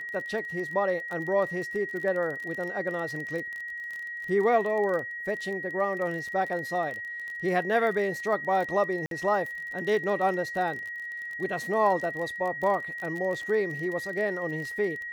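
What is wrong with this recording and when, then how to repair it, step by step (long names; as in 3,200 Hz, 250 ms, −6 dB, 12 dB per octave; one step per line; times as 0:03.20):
surface crackle 28 per second −33 dBFS
whistle 1,900 Hz −34 dBFS
0:09.06–0:09.11: drop-out 52 ms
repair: click removal
notch filter 1,900 Hz, Q 30
repair the gap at 0:09.06, 52 ms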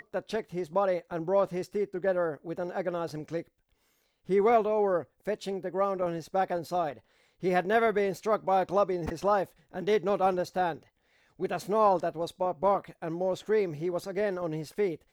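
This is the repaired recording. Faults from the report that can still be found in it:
none of them is left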